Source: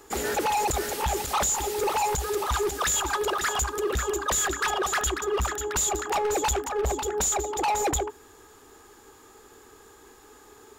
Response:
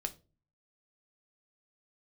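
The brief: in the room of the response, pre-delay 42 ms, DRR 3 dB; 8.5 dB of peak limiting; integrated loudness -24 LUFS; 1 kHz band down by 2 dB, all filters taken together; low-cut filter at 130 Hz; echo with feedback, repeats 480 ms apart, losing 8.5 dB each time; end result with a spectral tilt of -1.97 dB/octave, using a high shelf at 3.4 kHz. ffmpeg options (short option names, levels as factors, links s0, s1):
-filter_complex "[0:a]highpass=130,equalizer=f=1000:t=o:g=-3,highshelf=f=3400:g=4.5,alimiter=limit=0.0841:level=0:latency=1,aecho=1:1:480|960|1440|1920:0.376|0.143|0.0543|0.0206,asplit=2[s0][s1];[1:a]atrim=start_sample=2205,adelay=42[s2];[s1][s2]afir=irnorm=-1:irlink=0,volume=0.708[s3];[s0][s3]amix=inputs=2:normalize=0,volume=1.26"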